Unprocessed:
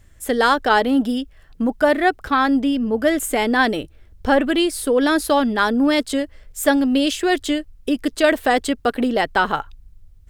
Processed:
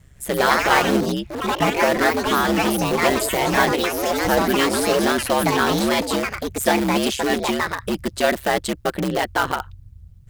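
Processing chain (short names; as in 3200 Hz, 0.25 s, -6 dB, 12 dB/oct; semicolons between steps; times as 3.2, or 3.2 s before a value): dynamic EQ 130 Hz, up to -5 dB, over -32 dBFS, Q 0.79; ring modulator 67 Hz; in parallel at -8 dB: wrapped overs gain 18 dB; on the sum: echoes that change speed 0.167 s, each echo +4 st, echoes 3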